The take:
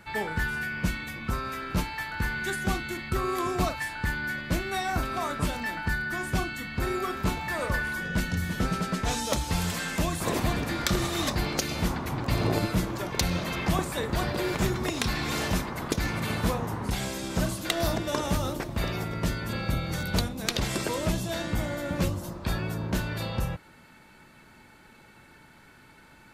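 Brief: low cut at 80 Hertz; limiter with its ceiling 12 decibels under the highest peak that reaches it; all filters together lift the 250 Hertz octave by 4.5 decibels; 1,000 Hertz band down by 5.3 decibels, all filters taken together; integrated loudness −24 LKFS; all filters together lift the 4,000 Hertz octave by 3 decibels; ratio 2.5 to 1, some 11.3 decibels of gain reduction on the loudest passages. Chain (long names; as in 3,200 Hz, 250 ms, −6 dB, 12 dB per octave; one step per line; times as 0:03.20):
high-pass filter 80 Hz
parametric band 250 Hz +7 dB
parametric band 1,000 Hz −8 dB
parametric band 4,000 Hz +4 dB
downward compressor 2.5 to 1, threshold −38 dBFS
level +16 dB
brickwall limiter −15 dBFS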